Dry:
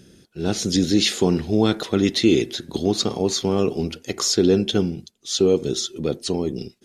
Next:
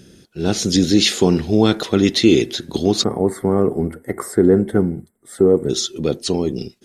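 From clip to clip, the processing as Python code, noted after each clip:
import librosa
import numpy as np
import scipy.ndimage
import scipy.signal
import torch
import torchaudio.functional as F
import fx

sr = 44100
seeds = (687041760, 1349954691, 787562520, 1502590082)

y = fx.spec_box(x, sr, start_s=3.04, length_s=2.65, low_hz=2200.0, high_hz=7400.0, gain_db=-27)
y = y * librosa.db_to_amplitude(4.0)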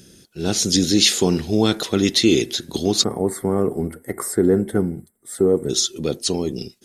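y = fx.high_shelf(x, sr, hz=4800.0, db=11.0)
y = y * librosa.db_to_amplitude(-3.5)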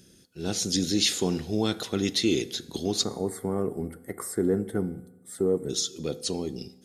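y = fx.rev_fdn(x, sr, rt60_s=1.1, lf_ratio=1.1, hf_ratio=0.75, size_ms=12.0, drr_db=16.0)
y = y * librosa.db_to_amplitude(-8.5)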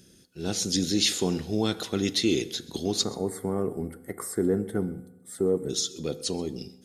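y = x + 10.0 ** (-22.0 / 20.0) * np.pad(x, (int(130 * sr / 1000.0), 0))[:len(x)]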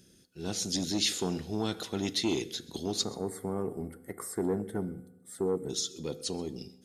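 y = fx.transformer_sat(x, sr, knee_hz=500.0)
y = y * librosa.db_to_amplitude(-4.5)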